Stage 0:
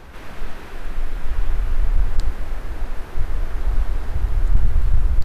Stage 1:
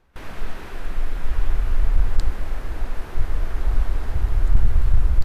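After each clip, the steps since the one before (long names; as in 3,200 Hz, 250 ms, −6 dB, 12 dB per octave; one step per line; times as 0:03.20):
noise gate with hold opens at −26 dBFS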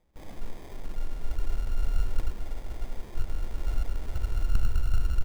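sample-rate reduction 1,400 Hz, jitter 0%
level −8.5 dB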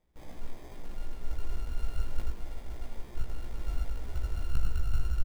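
double-tracking delay 17 ms −3 dB
level −5 dB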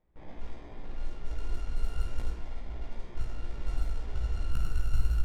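flutter between parallel walls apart 8.9 metres, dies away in 0.51 s
low-pass that shuts in the quiet parts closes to 2,200 Hz, open at −19.5 dBFS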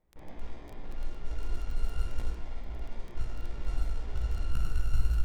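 surface crackle 11 per second −37 dBFS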